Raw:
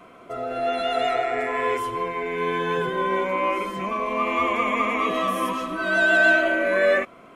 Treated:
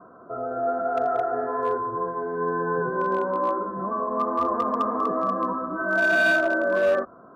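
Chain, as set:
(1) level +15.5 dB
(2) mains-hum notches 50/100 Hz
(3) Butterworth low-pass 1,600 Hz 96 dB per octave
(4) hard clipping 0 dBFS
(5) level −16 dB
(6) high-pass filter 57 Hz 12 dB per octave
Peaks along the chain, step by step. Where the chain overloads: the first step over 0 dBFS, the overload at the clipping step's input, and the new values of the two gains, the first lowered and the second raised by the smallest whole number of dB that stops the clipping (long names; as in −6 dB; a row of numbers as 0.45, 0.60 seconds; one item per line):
+8.5, +8.5, +7.0, 0.0, −16.0, −14.5 dBFS
step 1, 7.0 dB
step 1 +8.5 dB, step 5 −9 dB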